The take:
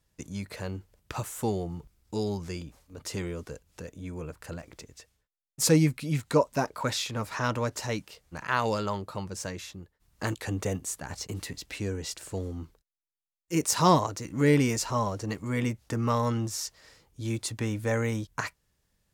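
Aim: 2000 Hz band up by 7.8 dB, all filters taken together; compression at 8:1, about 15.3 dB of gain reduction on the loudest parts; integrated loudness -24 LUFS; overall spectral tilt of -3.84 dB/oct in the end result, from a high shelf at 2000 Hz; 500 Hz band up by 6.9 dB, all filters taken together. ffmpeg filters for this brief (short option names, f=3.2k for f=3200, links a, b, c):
-af "equalizer=f=500:t=o:g=7.5,highshelf=f=2k:g=4,equalizer=f=2k:t=o:g=7,acompressor=threshold=-27dB:ratio=8,volume=9dB"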